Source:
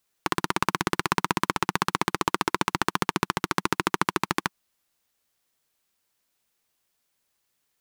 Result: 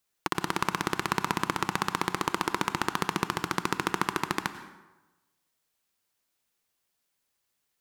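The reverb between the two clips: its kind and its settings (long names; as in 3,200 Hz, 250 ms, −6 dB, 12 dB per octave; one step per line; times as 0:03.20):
dense smooth reverb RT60 1.1 s, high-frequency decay 0.65×, pre-delay 80 ms, DRR 11 dB
level −3.5 dB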